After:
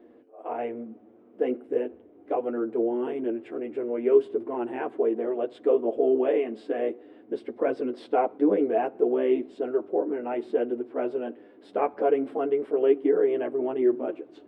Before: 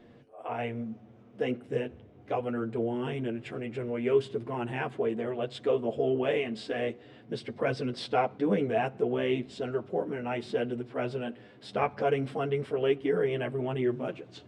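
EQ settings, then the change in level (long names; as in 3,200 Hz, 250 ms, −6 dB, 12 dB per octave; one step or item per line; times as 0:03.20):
parametric band 5,600 Hz −15 dB 2.4 octaves
dynamic equaliser 720 Hz, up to +3 dB, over −40 dBFS, Q 0.84
low shelf with overshoot 210 Hz −13 dB, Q 3
0.0 dB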